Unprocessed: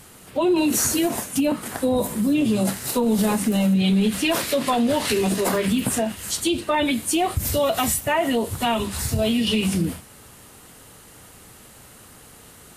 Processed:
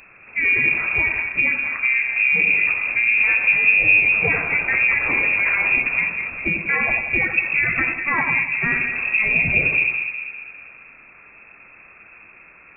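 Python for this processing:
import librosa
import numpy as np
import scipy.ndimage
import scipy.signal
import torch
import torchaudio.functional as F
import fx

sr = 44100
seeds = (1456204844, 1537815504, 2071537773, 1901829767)

p1 = fx.octave_divider(x, sr, octaves=1, level_db=-2.0)
p2 = fx.formant_shift(p1, sr, semitones=-3)
p3 = p2 + fx.echo_split(p2, sr, split_hz=780.0, low_ms=201, high_ms=90, feedback_pct=52, wet_db=-6.0, dry=0)
y = fx.freq_invert(p3, sr, carrier_hz=2600)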